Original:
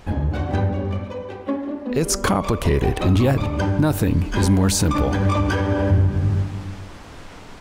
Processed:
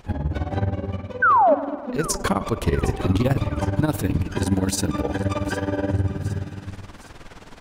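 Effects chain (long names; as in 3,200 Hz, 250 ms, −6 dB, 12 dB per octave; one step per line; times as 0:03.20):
amplitude tremolo 19 Hz, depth 79%
0:01.22–0:01.55: sound drawn into the spectrogram fall 540–1,600 Hz −15 dBFS
0:04.27–0:06.65: notch comb filter 1,100 Hz
echo with a time of its own for lows and highs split 1,100 Hz, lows 109 ms, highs 761 ms, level −16 dB
spring reverb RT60 2.3 s, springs 49 ms, chirp 65 ms, DRR 19.5 dB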